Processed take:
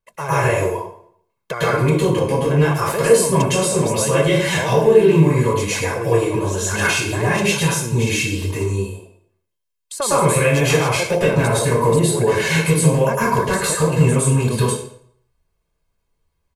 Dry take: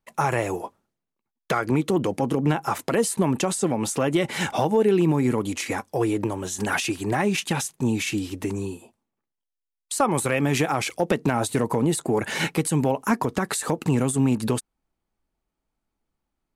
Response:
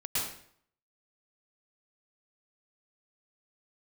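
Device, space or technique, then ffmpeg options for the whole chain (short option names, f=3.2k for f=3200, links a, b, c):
microphone above a desk: -filter_complex "[0:a]aecho=1:1:1.9:0.7[a];[1:a]atrim=start_sample=2205[b];[a][b]afir=irnorm=-1:irlink=0"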